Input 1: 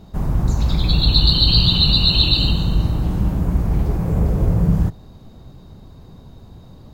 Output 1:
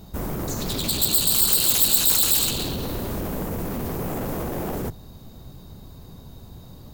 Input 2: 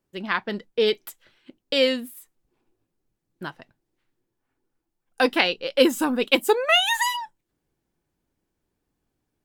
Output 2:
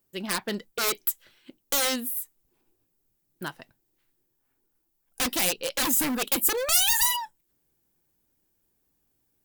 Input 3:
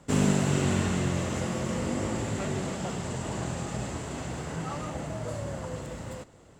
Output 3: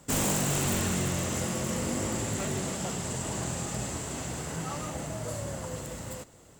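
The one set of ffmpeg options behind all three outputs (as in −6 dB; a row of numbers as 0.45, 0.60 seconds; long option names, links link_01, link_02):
-af "alimiter=limit=-10dB:level=0:latency=1:release=41,aeval=exprs='0.0794*(abs(mod(val(0)/0.0794+3,4)-2)-1)':channel_layout=same,aemphasis=mode=production:type=50fm,volume=-1dB"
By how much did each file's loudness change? −3.5, −2.0, −0.5 LU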